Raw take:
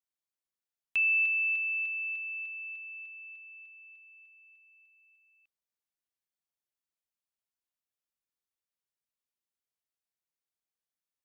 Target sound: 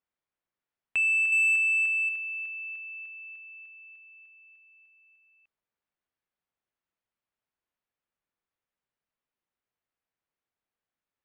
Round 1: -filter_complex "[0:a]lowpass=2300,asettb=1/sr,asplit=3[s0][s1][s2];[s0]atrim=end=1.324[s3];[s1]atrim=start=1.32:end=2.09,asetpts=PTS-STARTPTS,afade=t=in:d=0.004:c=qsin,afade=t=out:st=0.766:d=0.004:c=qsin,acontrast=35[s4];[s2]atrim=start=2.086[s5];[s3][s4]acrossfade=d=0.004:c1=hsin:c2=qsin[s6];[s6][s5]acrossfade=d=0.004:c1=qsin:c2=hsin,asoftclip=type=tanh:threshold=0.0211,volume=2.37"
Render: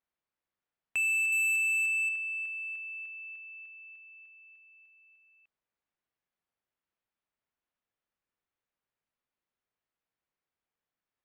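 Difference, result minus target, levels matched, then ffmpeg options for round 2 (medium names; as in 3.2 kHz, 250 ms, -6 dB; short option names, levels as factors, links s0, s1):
saturation: distortion +9 dB
-filter_complex "[0:a]lowpass=2300,asettb=1/sr,asplit=3[s0][s1][s2];[s0]atrim=end=1.324[s3];[s1]atrim=start=1.32:end=2.09,asetpts=PTS-STARTPTS,afade=t=in:d=0.004:c=qsin,afade=t=out:st=0.766:d=0.004:c=qsin,acontrast=35[s4];[s2]atrim=start=2.086[s5];[s3][s4]acrossfade=d=0.004:c1=hsin:c2=qsin[s6];[s6][s5]acrossfade=d=0.004:c1=qsin:c2=hsin,asoftclip=type=tanh:threshold=0.0501,volume=2.37"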